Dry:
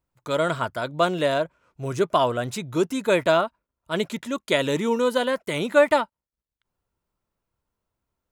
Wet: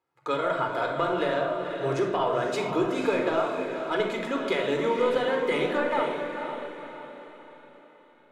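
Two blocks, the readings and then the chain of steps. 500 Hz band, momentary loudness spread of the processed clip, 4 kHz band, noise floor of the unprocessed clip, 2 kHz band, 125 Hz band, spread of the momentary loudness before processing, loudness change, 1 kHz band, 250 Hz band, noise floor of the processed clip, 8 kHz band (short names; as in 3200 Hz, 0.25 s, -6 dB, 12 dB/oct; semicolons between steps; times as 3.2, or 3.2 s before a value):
-3.0 dB, 11 LU, -5.5 dB, under -85 dBFS, -3.0 dB, -6.0 dB, 11 LU, -3.5 dB, -2.0 dB, -3.0 dB, -57 dBFS, n/a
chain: HPF 210 Hz 12 dB/oct; high shelf 4000 Hz -6.5 dB; compressor, threshold -27 dBFS, peak gain reduction 14.5 dB; overdrive pedal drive 10 dB, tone 2200 Hz, clips at -15 dBFS; on a send: diffused feedback echo 0.492 s, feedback 45%, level -7 dB; on the sum: shoebox room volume 2700 m³, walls furnished, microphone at 4 m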